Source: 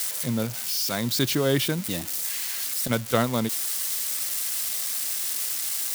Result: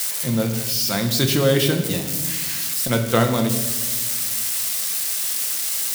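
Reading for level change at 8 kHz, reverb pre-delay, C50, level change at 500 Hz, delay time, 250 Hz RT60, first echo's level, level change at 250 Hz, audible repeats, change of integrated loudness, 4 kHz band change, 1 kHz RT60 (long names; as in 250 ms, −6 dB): +4.5 dB, 6 ms, 8.5 dB, +6.0 dB, no echo audible, 2.1 s, no echo audible, +5.5 dB, no echo audible, +5.0 dB, +5.0 dB, 1.0 s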